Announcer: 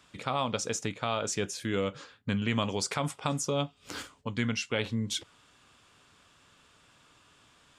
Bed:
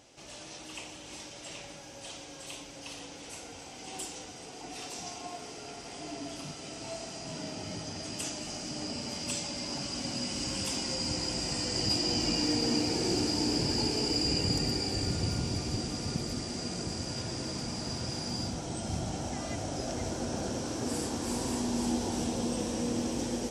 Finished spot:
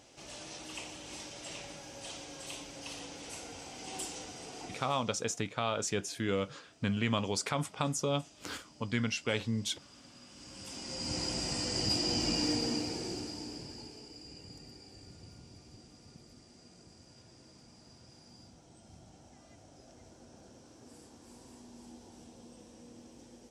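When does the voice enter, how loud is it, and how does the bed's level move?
4.55 s, −2.0 dB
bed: 0:04.63 −0.5 dB
0:05.16 −21 dB
0:10.26 −21 dB
0:11.18 −2 dB
0:12.48 −2 dB
0:14.11 −21.5 dB

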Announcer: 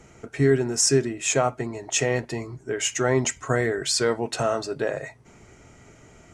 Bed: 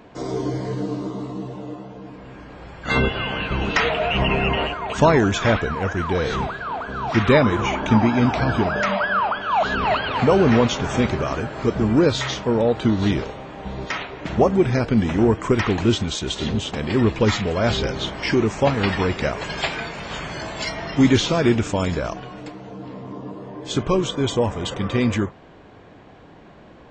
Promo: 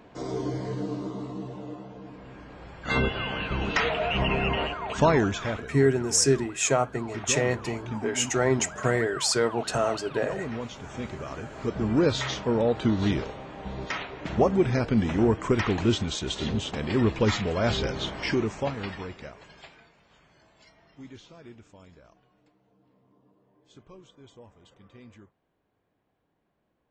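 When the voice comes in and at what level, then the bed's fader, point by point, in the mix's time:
5.35 s, −1.5 dB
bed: 0:05.21 −5.5 dB
0:05.73 −18 dB
0:10.73 −18 dB
0:12.09 −5 dB
0:18.23 −5 dB
0:20.05 −30 dB

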